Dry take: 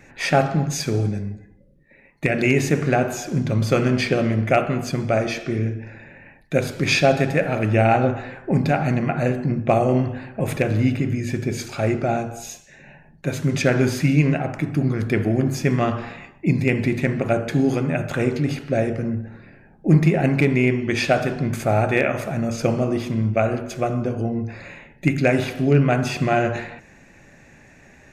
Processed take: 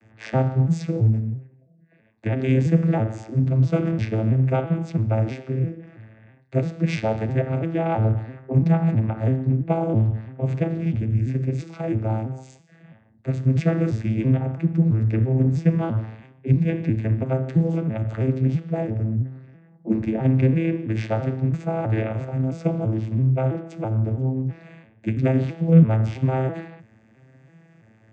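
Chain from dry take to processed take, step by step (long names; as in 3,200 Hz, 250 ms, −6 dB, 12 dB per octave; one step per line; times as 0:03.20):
vocoder with an arpeggio as carrier minor triad, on A2, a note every 331 ms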